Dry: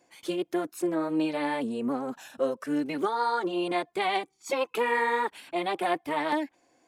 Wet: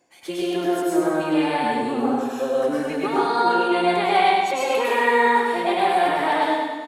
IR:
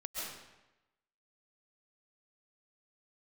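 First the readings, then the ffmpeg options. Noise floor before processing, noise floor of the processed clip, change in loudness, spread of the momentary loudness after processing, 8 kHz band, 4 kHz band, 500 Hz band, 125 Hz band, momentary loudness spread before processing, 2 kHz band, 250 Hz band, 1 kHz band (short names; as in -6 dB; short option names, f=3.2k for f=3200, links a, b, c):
-70 dBFS, -32 dBFS, +8.5 dB, 6 LU, +8.0 dB, +8.5 dB, +8.5 dB, +8.0 dB, 5 LU, +8.5 dB, +6.5 dB, +10.5 dB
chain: -filter_complex "[0:a]aecho=1:1:101|202|303|404|505|606|707|808:0.501|0.291|0.169|0.0978|0.0567|0.0329|0.0191|0.0111[a];[1:a]atrim=start_sample=2205,asetrate=52920,aresample=44100[b];[a][b]afir=irnorm=-1:irlink=0,volume=7.5dB"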